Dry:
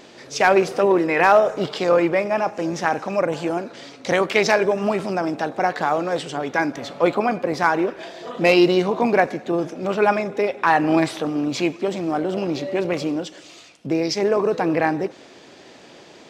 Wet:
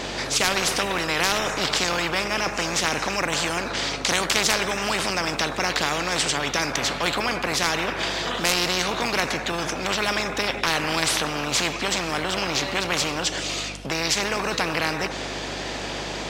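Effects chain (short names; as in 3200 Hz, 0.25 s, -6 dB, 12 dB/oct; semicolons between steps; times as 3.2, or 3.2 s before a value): hum 50 Hz, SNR 32 dB; spectral compressor 4:1; gain +3 dB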